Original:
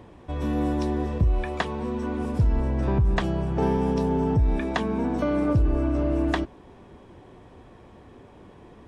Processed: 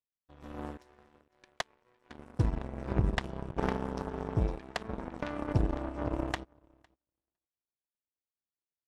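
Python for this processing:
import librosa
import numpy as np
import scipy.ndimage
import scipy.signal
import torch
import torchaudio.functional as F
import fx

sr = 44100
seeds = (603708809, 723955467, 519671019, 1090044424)

y = fx.highpass(x, sr, hz=370.0, slope=24, at=(0.77, 2.1))
y = fx.echo_feedback(y, sr, ms=506, feedback_pct=27, wet_db=-10.0)
y = fx.power_curve(y, sr, exponent=3.0)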